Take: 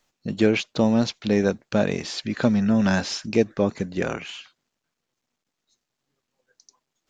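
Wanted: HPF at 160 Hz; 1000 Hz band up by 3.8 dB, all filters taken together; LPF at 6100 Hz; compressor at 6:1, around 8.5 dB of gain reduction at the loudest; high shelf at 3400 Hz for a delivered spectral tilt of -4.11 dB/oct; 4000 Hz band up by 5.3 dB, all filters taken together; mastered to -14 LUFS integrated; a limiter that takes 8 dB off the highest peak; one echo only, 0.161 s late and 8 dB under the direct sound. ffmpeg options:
-af "highpass=160,lowpass=6.1k,equalizer=f=1k:t=o:g=4.5,highshelf=f=3.4k:g=5.5,equalizer=f=4k:t=o:g=3.5,acompressor=threshold=-23dB:ratio=6,alimiter=limit=-17.5dB:level=0:latency=1,aecho=1:1:161:0.398,volume=15dB"

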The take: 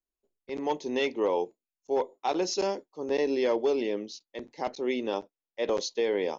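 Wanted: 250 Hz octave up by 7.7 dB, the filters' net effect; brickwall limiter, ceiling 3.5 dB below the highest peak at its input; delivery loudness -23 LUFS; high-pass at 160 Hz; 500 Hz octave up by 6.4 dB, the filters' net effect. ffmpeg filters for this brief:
-af "highpass=160,equalizer=f=250:t=o:g=8.5,equalizer=f=500:t=o:g=5,volume=2.5dB,alimiter=limit=-12dB:level=0:latency=1"

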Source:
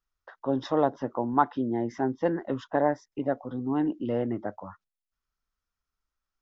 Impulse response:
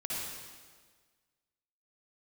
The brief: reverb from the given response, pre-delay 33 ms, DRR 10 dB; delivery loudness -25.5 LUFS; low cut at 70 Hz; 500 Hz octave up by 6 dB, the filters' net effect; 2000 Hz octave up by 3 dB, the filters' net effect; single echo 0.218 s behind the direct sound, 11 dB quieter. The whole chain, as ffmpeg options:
-filter_complex "[0:a]highpass=70,equalizer=f=500:t=o:g=7,equalizer=f=2k:t=o:g=3.5,aecho=1:1:218:0.282,asplit=2[a][b];[1:a]atrim=start_sample=2205,adelay=33[c];[b][c]afir=irnorm=-1:irlink=0,volume=-14dB[d];[a][d]amix=inputs=2:normalize=0,volume=-1.5dB"

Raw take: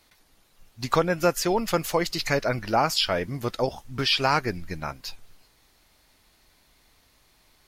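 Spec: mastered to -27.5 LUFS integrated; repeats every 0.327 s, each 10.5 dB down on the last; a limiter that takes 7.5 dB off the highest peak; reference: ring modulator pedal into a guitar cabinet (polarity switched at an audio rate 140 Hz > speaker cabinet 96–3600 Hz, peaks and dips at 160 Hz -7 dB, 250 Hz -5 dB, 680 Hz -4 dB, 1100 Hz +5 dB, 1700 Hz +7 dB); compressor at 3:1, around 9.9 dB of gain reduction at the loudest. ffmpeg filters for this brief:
-af "acompressor=threshold=-30dB:ratio=3,alimiter=limit=-23.5dB:level=0:latency=1,aecho=1:1:327|654|981:0.299|0.0896|0.0269,aeval=exprs='val(0)*sgn(sin(2*PI*140*n/s))':c=same,highpass=96,equalizer=f=160:t=q:w=4:g=-7,equalizer=f=250:t=q:w=4:g=-5,equalizer=f=680:t=q:w=4:g=-4,equalizer=f=1.1k:t=q:w=4:g=5,equalizer=f=1.7k:t=q:w=4:g=7,lowpass=f=3.6k:w=0.5412,lowpass=f=3.6k:w=1.3066,volume=7.5dB"

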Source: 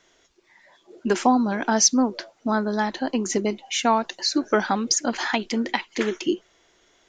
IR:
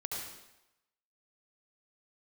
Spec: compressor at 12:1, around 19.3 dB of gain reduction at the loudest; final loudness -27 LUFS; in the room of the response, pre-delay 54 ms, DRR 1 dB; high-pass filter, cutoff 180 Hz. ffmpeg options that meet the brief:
-filter_complex "[0:a]highpass=180,acompressor=threshold=-33dB:ratio=12,asplit=2[a][b];[1:a]atrim=start_sample=2205,adelay=54[c];[b][c]afir=irnorm=-1:irlink=0,volume=-3dB[d];[a][d]amix=inputs=2:normalize=0,volume=8dB"

